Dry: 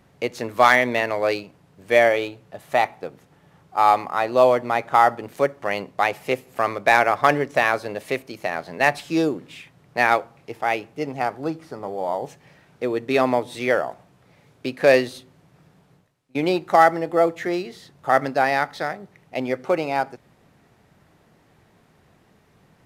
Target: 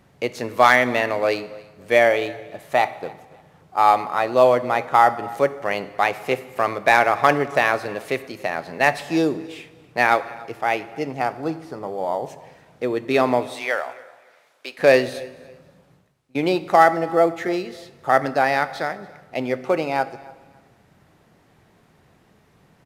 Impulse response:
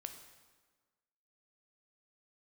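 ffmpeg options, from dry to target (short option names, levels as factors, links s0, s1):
-filter_complex "[0:a]asettb=1/sr,asplit=3[s0][s1][s2];[s0]atrim=end=13.474[s3];[s1]atrim=start=13.47:end=14.79,asetpts=PTS-STARTPTS,afade=t=in:d=0.004:c=qsin,afade=t=out:st=1.316:d=0.004:c=qsin,highpass=760[s4];[s2]atrim=start=14.786[s5];[s3][s4]acrossfade=d=0.004:c1=hsin:c2=qsin[s6];[s6][s5]acrossfade=d=0.004:c1=qsin:c2=hsin,aecho=1:1:284|568:0.0668|0.018,asplit=2[s7][s8];[1:a]atrim=start_sample=2205[s9];[s8][s9]afir=irnorm=-1:irlink=0,volume=1.06[s10];[s7][s10]amix=inputs=2:normalize=0,volume=0.668"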